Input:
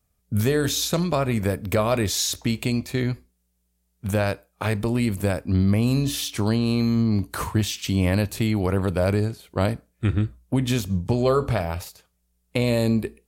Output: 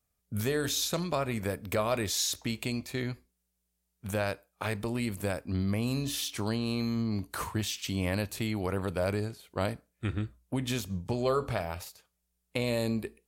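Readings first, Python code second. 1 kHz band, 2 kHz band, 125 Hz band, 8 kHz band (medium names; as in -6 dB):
-6.5 dB, -5.5 dB, -11.0 dB, -5.5 dB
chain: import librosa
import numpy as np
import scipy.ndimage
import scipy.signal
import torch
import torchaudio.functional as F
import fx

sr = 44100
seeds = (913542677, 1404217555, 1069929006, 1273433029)

y = fx.low_shelf(x, sr, hz=370.0, db=-6.0)
y = y * 10.0 ** (-5.5 / 20.0)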